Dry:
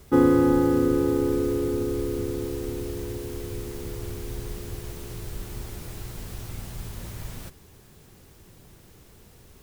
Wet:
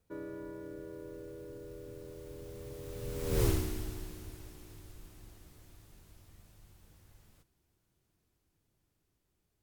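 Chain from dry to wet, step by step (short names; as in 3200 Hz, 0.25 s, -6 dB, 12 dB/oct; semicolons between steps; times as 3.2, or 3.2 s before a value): Doppler pass-by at 3.44, 48 m/s, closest 4.1 m; gain +7.5 dB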